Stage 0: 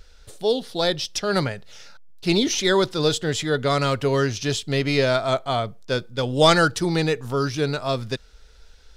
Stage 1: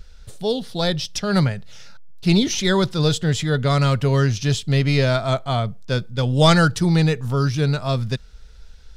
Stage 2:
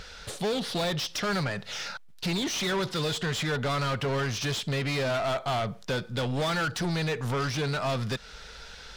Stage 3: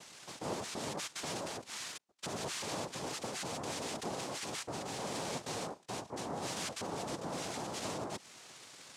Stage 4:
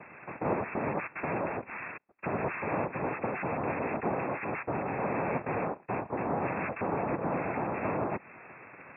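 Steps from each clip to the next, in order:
resonant low shelf 240 Hz +7 dB, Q 1.5
compression 6:1, threshold -25 dBFS, peak gain reduction 15 dB; overdrive pedal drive 29 dB, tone 3.3 kHz, clips at -13.5 dBFS; trim -7 dB
peak limiter -27.5 dBFS, peak gain reduction 5.5 dB; noise-vocoded speech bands 2; trim -7.5 dB
brick-wall FIR low-pass 2.7 kHz; trim +9 dB

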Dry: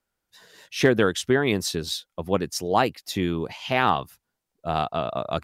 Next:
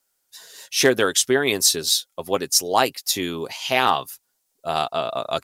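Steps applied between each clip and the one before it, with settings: tone controls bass -11 dB, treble +13 dB; comb 7.5 ms, depth 31%; trim +2 dB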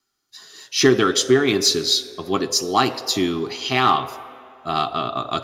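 reverberation RT60 2.2 s, pre-delay 3 ms, DRR 9.5 dB; in parallel at -11 dB: hard clipper -6 dBFS, distortion -10 dB; on the sum: trim -9.5 dB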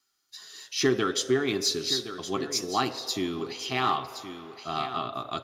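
delay 1069 ms -12 dB; tape noise reduction on one side only encoder only; trim -9 dB

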